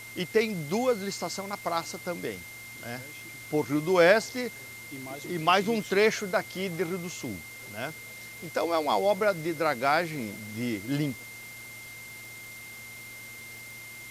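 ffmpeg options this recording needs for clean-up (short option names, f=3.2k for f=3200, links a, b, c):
-af "adeclick=t=4,bandreject=f=114.2:t=h:w=4,bandreject=f=228.4:t=h:w=4,bandreject=f=342.6:t=h:w=4,bandreject=f=2.1k:w=30,afwtdn=0.0045"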